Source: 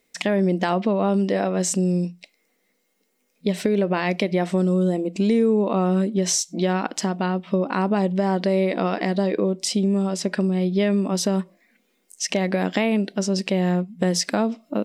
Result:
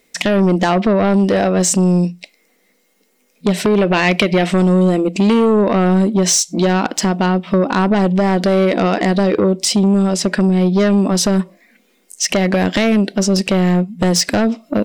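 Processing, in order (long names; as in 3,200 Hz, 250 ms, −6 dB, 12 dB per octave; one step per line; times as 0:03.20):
sine wavefolder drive 8 dB, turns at −6.5 dBFS
0:03.74–0:05.61: dynamic equaliser 2,700 Hz, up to +7 dB, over −33 dBFS, Q 1.3
level −2 dB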